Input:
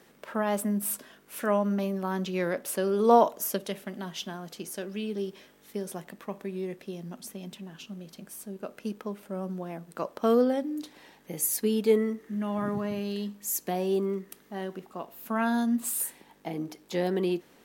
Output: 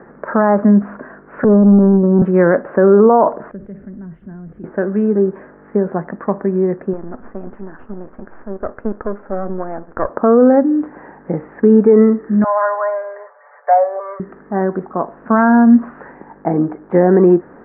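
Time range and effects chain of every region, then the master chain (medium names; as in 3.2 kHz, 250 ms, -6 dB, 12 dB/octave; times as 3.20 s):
1.44–2.22 s: steep low-pass 550 Hz 96 dB/octave + waveshaping leveller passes 1
3.51–4.64 s: jump at every zero crossing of -43.5 dBFS + amplifier tone stack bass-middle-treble 10-0-1 + level flattener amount 50%
6.93–10.09 s: partial rectifier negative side -12 dB + peaking EQ 160 Hz -12 dB 0.53 oct
12.44–14.20 s: Chebyshev band-pass 510–2200 Hz, order 5 + comb 6.9 ms, depth 76%
whole clip: steep low-pass 1.7 kHz 48 dB/octave; loudness maximiser +19.5 dB; trim -1 dB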